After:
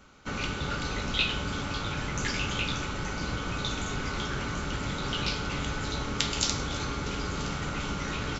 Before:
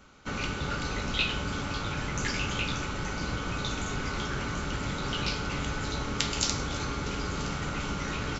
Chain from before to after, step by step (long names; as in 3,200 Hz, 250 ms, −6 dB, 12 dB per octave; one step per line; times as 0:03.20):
dynamic equaliser 3,500 Hz, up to +3 dB, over −46 dBFS, Q 3.6